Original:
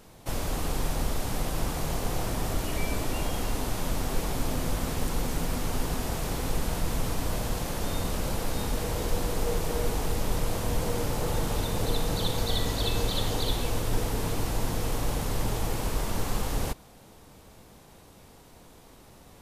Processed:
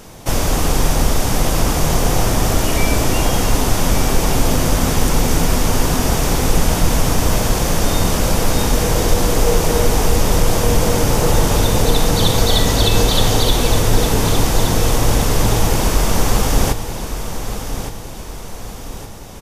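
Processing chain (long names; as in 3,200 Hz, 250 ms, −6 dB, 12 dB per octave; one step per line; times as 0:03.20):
parametric band 6,000 Hz +4.5 dB 0.48 octaves
notch filter 4,100 Hz, Q 20
on a send: repeating echo 1,166 ms, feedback 45%, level −10 dB
on the sum: boost into a limiter +14.5 dB
level −1 dB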